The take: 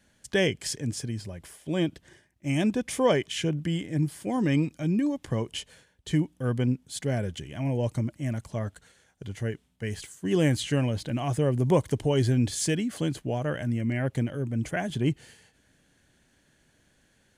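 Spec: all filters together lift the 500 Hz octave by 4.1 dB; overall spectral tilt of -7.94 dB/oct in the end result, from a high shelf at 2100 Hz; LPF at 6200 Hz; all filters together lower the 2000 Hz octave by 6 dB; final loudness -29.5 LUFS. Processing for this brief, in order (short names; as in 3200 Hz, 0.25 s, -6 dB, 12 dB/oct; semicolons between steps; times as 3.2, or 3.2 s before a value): LPF 6200 Hz; bell 500 Hz +5.5 dB; bell 2000 Hz -3.5 dB; high shelf 2100 Hz -7.5 dB; gain -2.5 dB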